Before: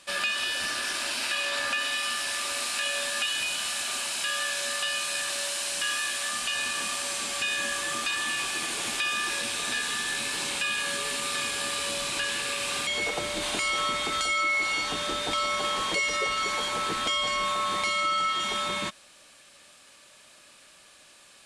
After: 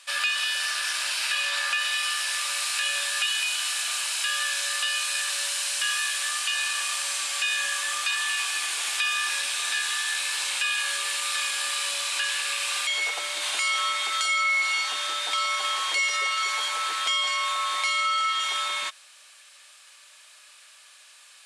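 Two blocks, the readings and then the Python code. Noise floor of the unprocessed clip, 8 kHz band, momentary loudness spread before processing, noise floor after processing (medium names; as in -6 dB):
-54 dBFS, +3.0 dB, 3 LU, -52 dBFS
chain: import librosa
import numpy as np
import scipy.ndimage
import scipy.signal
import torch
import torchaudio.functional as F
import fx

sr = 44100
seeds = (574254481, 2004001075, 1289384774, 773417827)

y = scipy.signal.sosfilt(scipy.signal.butter(2, 1100.0, 'highpass', fs=sr, output='sos'), x)
y = y * 10.0 ** (3.0 / 20.0)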